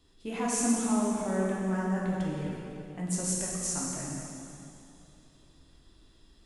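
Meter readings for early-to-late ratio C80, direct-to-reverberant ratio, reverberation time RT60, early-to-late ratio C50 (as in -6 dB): 0.0 dB, -5.0 dB, 2.8 s, -1.5 dB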